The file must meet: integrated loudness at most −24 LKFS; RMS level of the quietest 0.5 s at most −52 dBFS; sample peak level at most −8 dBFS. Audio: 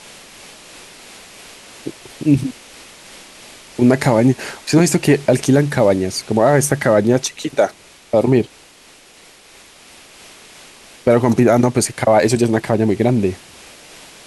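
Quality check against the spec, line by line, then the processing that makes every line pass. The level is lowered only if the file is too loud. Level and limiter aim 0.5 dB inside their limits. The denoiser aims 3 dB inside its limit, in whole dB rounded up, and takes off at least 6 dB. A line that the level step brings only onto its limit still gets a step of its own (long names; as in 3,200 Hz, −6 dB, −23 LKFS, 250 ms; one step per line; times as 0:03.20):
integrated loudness −16.0 LKFS: out of spec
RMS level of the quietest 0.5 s −46 dBFS: out of spec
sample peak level −2.0 dBFS: out of spec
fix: level −8.5 dB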